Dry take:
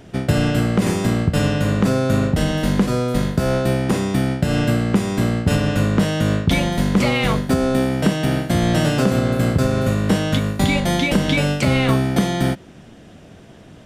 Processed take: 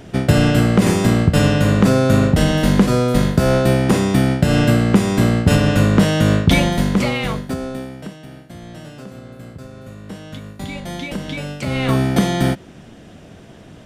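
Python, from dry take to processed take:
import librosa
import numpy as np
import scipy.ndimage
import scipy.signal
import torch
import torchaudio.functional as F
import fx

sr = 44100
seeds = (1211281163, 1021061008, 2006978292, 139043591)

y = fx.gain(x, sr, db=fx.line((6.59, 4.0), (7.63, -7.5), (8.27, -18.5), (9.79, -18.5), (11.01, -9.0), (11.54, -9.0), (12.01, 2.0)))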